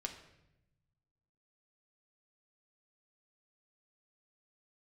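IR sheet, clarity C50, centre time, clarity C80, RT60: 9.0 dB, 17 ms, 11.5 dB, 0.90 s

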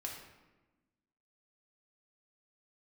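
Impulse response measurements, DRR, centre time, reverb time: −1.0 dB, 42 ms, 1.1 s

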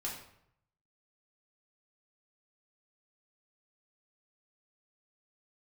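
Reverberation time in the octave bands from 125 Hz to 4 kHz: 1.0, 0.75, 0.75, 0.70, 0.65, 0.50 seconds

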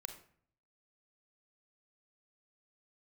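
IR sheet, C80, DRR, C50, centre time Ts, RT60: 12.5 dB, 6.0 dB, 8.5 dB, 15 ms, 0.55 s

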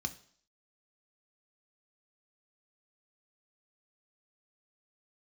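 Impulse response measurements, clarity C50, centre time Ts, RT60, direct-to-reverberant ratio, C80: 16.0 dB, 6 ms, 0.55 s, 7.5 dB, 20.0 dB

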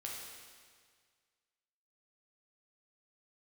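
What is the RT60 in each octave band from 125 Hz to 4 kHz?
2.0, 1.8, 1.8, 1.8, 1.8, 1.7 seconds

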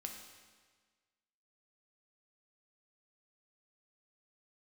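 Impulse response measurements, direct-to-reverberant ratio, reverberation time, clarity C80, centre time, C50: 2.5 dB, 1.5 s, 6.5 dB, 42 ms, 5.0 dB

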